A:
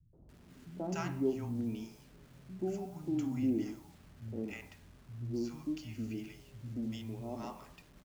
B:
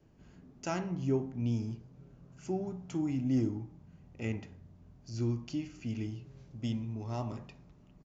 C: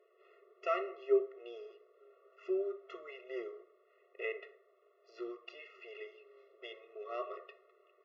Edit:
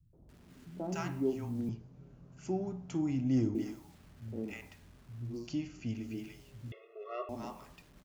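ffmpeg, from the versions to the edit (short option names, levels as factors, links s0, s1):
-filter_complex "[1:a]asplit=2[s0][s1];[0:a]asplit=4[s2][s3][s4][s5];[s2]atrim=end=1.692[s6];[s0]atrim=start=1.688:end=3.552[s7];[s3]atrim=start=3.548:end=5.52[s8];[s1]atrim=start=5.28:end=6.14[s9];[s4]atrim=start=5.9:end=6.722[s10];[2:a]atrim=start=6.718:end=7.292[s11];[s5]atrim=start=7.288[s12];[s6][s7]acrossfade=d=0.004:c1=hsin:c2=hsin[s13];[s13][s8]acrossfade=d=0.004:c1=hsin:c2=hsin[s14];[s14][s9]acrossfade=d=0.24:c1=tri:c2=tri[s15];[s15][s10]acrossfade=d=0.24:c1=tri:c2=tri[s16];[s16][s11]acrossfade=d=0.004:c1=hsin:c2=hsin[s17];[s17][s12]acrossfade=d=0.004:c1=hsin:c2=hsin"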